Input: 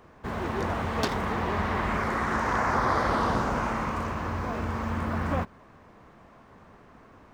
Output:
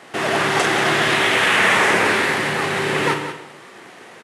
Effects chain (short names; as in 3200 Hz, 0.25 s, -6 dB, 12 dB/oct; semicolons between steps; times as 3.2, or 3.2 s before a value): CVSD 32 kbps; HPF 140 Hz 12 dB/oct; in parallel at -1 dB: limiter -20.5 dBFS, peak gain reduction 6.5 dB; on the sum: echo 0.318 s -11 dB; on a send at -5 dB: reverb RT60 1.4 s, pre-delay 7 ms; on the sum: speed mistake 45 rpm record played at 78 rpm; gain +5 dB